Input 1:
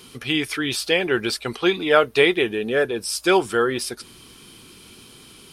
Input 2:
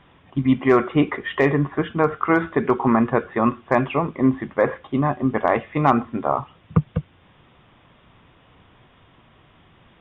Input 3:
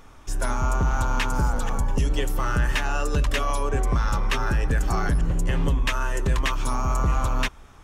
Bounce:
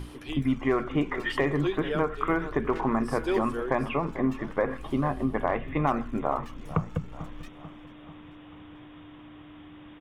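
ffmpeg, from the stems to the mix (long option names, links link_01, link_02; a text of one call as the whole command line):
ffmpeg -i stem1.wav -i stem2.wav -i stem3.wav -filter_complex "[0:a]equalizer=frequency=360:width=1.5:gain=8,aeval=exprs='val(0)*pow(10,-25*(0.5-0.5*cos(2*PI*0.59*n/s))/20)':channel_layout=same,volume=-8.5dB[link_01];[1:a]volume=1.5dB,asplit=2[link_02][link_03];[link_03]volume=-24dB[link_04];[2:a]aeval=exprs='(tanh(31.6*val(0)+0.65)-tanh(0.65))/31.6':channel_layout=same,aphaser=in_gain=1:out_gain=1:delay=2.3:decay=0.74:speed=0.36:type=sinusoidal,volume=-19.5dB,asplit=2[link_05][link_06];[link_06]volume=-21dB[link_07];[link_01][link_02]amix=inputs=2:normalize=0,aeval=exprs='val(0)+0.0251*(sin(2*PI*60*n/s)+sin(2*PI*2*60*n/s)/2+sin(2*PI*3*60*n/s)/3+sin(2*PI*4*60*n/s)/4+sin(2*PI*5*60*n/s)/5)':channel_layout=same,acompressor=threshold=-27dB:ratio=2.5,volume=0dB[link_08];[link_04][link_07]amix=inputs=2:normalize=0,aecho=0:1:440|880|1320|1760|2200|2640|3080|3520:1|0.53|0.281|0.149|0.0789|0.0418|0.0222|0.0117[link_09];[link_05][link_08][link_09]amix=inputs=3:normalize=0,bandreject=frequency=60:width_type=h:width=6,bandreject=frequency=120:width_type=h:width=6,bandreject=frequency=180:width_type=h:width=6,bandreject=frequency=240:width_type=h:width=6" out.wav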